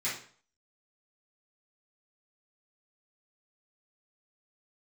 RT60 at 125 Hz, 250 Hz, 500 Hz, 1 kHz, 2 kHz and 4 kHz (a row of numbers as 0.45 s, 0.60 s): 0.50 s, 0.45 s, 0.45 s, 0.50 s, 0.45 s, 0.40 s